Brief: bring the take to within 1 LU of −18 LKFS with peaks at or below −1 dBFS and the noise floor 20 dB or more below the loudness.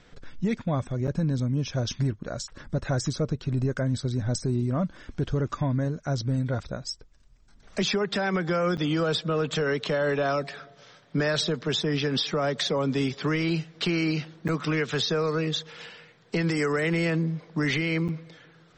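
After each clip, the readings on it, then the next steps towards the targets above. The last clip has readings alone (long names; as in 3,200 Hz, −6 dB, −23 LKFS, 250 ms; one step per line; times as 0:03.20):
number of dropouts 4; longest dropout 7.9 ms; integrated loudness −27.5 LKFS; sample peak −14.5 dBFS; target loudness −18.0 LKFS
→ repair the gap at 0:01.07/0:08.77/0:14.48/0:18.08, 7.9 ms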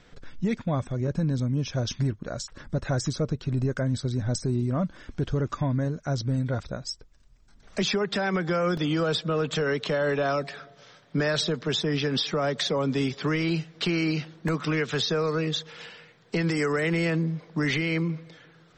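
number of dropouts 0; integrated loudness −27.5 LKFS; sample peak −14.0 dBFS; target loudness −18.0 LKFS
→ level +9.5 dB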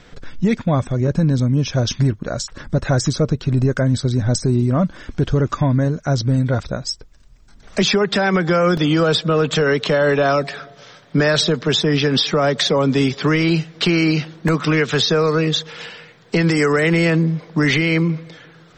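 integrated loudness −18.0 LKFS; sample peak −4.5 dBFS; background noise floor −47 dBFS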